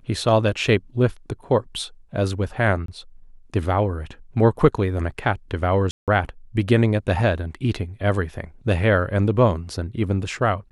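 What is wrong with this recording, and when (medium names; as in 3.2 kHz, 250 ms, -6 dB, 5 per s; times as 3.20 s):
2.86–2.88 s: dropout 23 ms
5.91–6.08 s: dropout 167 ms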